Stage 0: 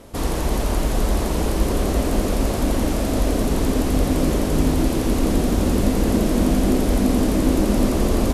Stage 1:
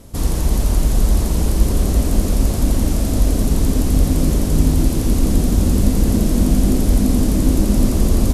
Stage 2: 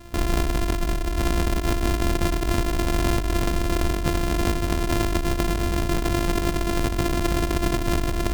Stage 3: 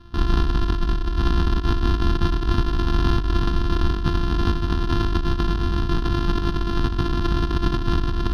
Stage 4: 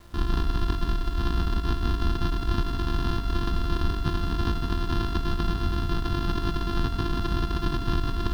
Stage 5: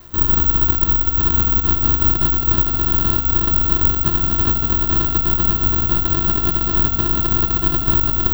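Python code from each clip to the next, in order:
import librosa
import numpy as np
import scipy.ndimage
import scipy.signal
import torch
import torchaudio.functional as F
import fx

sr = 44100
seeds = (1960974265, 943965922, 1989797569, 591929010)

y1 = fx.bass_treble(x, sr, bass_db=11, treble_db=9)
y1 = F.gain(torch.from_numpy(y1), -4.5).numpy()
y2 = np.r_[np.sort(y1[:len(y1) // 128 * 128].reshape(-1, 128), axis=1).ravel(), y1[len(y1) // 128 * 128:]]
y2 = fx.over_compress(y2, sr, threshold_db=-17.0, ratio=-1.0)
y2 = F.gain(torch.from_numpy(y2), -5.0).numpy()
y3 = fx.air_absorb(y2, sr, metres=89.0)
y3 = fx.fixed_phaser(y3, sr, hz=2200.0, stages=6)
y3 = fx.upward_expand(y3, sr, threshold_db=-31.0, expansion=1.5)
y3 = F.gain(torch.from_numpy(y3), 5.5).numpy()
y4 = fx.rider(y3, sr, range_db=10, speed_s=0.5)
y4 = fx.quant_dither(y4, sr, seeds[0], bits=8, dither='none')
y4 = fx.echo_feedback(y4, sr, ms=164, feedback_pct=57, wet_db=-10.0)
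y4 = F.gain(torch.from_numpy(y4), -5.5).numpy()
y5 = (np.kron(y4[::2], np.eye(2)[0]) * 2)[:len(y4)]
y5 = F.gain(torch.from_numpy(y5), 5.0).numpy()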